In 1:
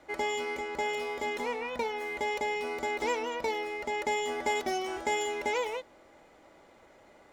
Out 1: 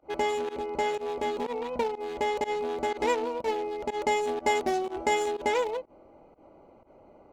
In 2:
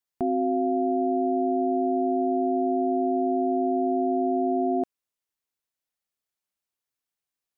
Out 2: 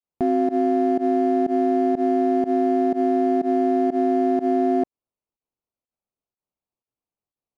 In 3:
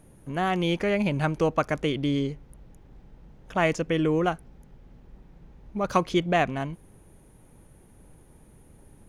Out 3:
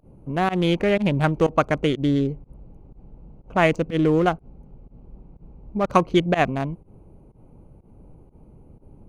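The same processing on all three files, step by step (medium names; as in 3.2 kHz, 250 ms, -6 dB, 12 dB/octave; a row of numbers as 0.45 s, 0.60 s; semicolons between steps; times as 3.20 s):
local Wiener filter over 25 samples; volume shaper 123 bpm, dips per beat 1, -23 dB, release 92 ms; trim +5.5 dB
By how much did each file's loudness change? +3.0 LU, +4.0 LU, +4.5 LU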